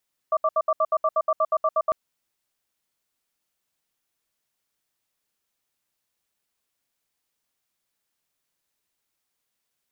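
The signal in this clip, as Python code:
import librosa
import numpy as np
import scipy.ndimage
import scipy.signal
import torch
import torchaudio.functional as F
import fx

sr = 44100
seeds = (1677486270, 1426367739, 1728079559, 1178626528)

y = fx.cadence(sr, length_s=1.6, low_hz=635.0, high_hz=1170.0, on_s=0.05, off_s=0.07, level_db=-20.5)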